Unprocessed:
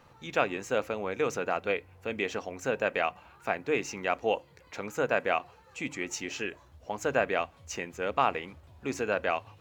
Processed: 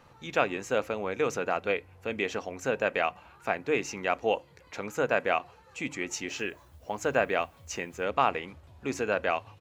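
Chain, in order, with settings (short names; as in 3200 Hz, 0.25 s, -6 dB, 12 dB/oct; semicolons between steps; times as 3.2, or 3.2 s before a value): downsampling 32000 Hz; 6.27–8.02 added noise blue -72 dBFS; gain +1 dB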